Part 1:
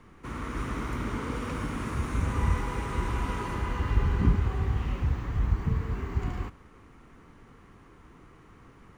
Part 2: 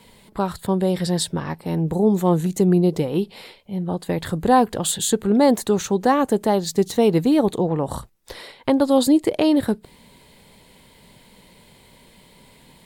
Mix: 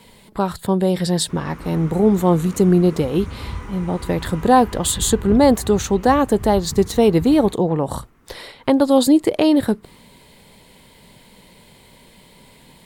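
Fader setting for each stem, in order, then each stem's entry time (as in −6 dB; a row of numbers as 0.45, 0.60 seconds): −3.5, +2.5 decibels; 1.05, 0.00 seconds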